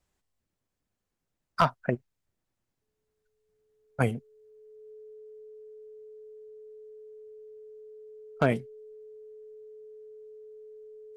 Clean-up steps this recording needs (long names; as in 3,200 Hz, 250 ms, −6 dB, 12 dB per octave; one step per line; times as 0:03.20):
clipped peaks rebuilt −11 dBFS
notch filter 430 Hz, Q 30